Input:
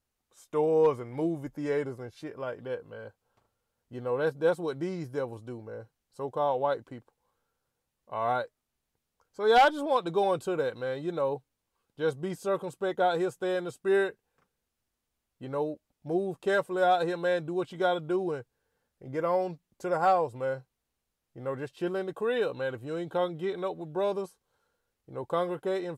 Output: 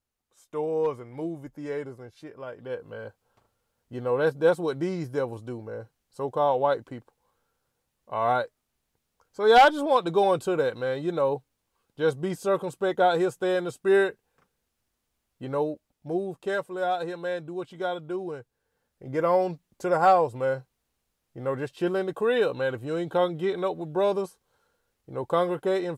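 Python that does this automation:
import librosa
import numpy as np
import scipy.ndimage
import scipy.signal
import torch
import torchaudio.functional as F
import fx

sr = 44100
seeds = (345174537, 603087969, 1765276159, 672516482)

y = fx.gain(x, sr, db=fx.line((2.51, -3.0), (2.91, 4.5), (15.52, 4.5), (16.71, -3.0), (18.29, -3.0), (19.2, 5.0)))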